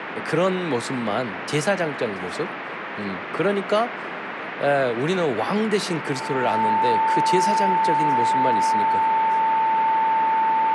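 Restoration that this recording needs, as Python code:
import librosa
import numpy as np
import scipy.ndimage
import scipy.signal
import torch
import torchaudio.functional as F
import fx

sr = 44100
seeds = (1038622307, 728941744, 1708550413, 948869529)

y = fx.notch(x, sr, hz=890.0, q=30.0)
y = fx.noise_reduce(y, sr, print_start_s=2.47, print_end_s=2.97, reduce_db=30.0)
y = fx.fix_echo_inverse(y, sr, delay_ms=679, level_db=-22.5)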